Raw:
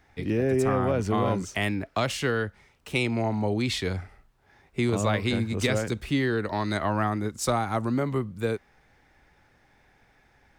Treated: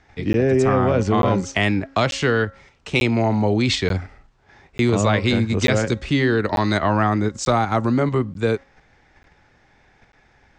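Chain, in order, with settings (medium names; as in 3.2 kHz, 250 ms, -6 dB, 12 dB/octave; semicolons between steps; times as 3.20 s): steep low-pass 7.6 kHz 36 dB/octave; de-hum 272 Hz, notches 7; in parallel at 0 dB: level held to a coarse grid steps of 15 dB; on the sum: crackling interface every 0.89 s, samples 512, zero, from 0.33 s; trim +3.5 dB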